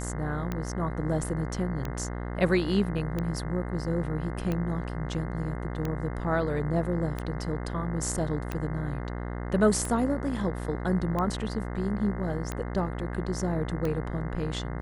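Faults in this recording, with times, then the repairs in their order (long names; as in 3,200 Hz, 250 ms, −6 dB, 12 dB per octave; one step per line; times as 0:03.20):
mains buzz 60 Hz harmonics 35 −34 dBFS
scratch tick 45 rpm −18 dBFS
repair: click removal
hum removal 60 Hz, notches 35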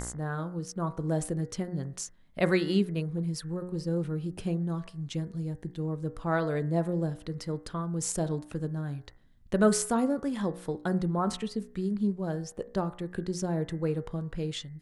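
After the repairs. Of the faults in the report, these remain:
none of them is left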